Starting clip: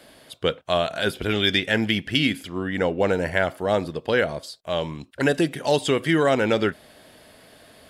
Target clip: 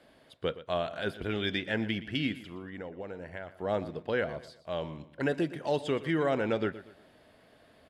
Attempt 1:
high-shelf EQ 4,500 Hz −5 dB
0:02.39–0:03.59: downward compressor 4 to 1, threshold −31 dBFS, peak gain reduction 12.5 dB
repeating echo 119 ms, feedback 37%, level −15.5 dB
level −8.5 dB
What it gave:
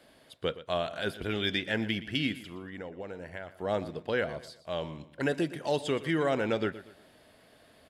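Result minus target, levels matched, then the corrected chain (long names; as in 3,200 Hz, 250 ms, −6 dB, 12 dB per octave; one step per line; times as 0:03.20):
8,000 Hz band +6.0 dB
high-shelf EQ 4,500 Hz −14 dB
0:02.39–0:03.59: downward compressor 4 to 1, threshold −31 dBFS, peak gain reduction 12 dB
repeating echo 119 ms, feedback 37%, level −15.5 dB
level −8.5 dB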